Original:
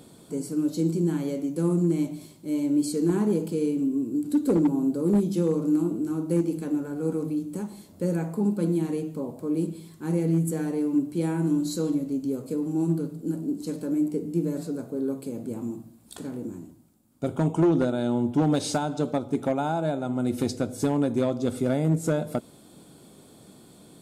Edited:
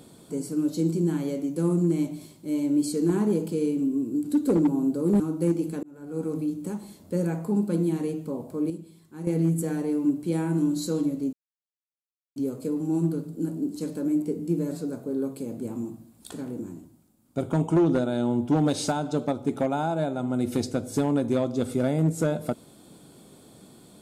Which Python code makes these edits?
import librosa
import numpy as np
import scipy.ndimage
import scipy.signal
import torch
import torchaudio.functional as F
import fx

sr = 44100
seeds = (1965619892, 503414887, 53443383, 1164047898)

y = fx.edit(x, sr, fx.cut(start_s=5.2, length_s=0.89),
    fx.fade_in_span(start_s=6.72, length_s=0.53),
    fx.clip_gain(start_s=9.59, length_s=0.57, db=-9.0),
    fx.insert_silence(at_s=12.22, length_s=1.03), tone=tone)